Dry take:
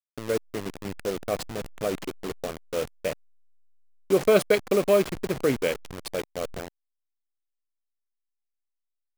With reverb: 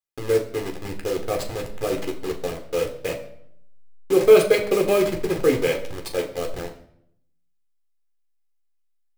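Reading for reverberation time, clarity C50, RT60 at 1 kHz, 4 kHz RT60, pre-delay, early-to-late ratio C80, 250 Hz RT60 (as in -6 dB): 0.70 s, 11.0 dB, 0.65 s, 0.55 s, 11 ms, 13.5 dB, 0.95 s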